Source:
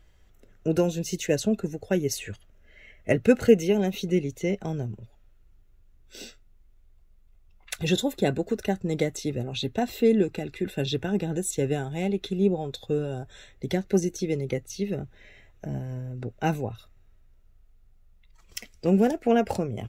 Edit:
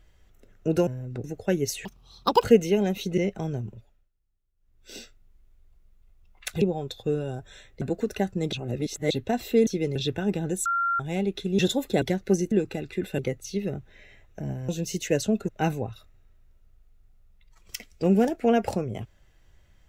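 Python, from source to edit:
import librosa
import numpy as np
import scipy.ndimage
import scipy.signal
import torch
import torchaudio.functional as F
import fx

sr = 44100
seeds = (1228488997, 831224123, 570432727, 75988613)

y = fx.edit(x, sr, fx.swap(start_s=0.87, length_s=0.8, other_s=15.94, other_length_s=0.37),
    fx.speed_span(start_s=2.28, length_s=1.13, speed=1.93),
    fx.cut(start_s=4.15, length_s=0.28),
    fx.fade_down_up(start_s=4.97, length_s=1.23, db=-20.0, fade_s=0.39),
    fx.swap(start_s=7.87, length_s=0.43, other_s=12.45, other_length_s=1.2),
    fx.reverse_span(start_s=9.01, length_s=0.58),
    fx.swap(start_s=10.15, length_s=0.67, other_s=14.15, other_length_s=0.29),
    fx.bleep(start_s=11.52, length_s=0.34, hz=1380.0, db=-22.0), tone=tone)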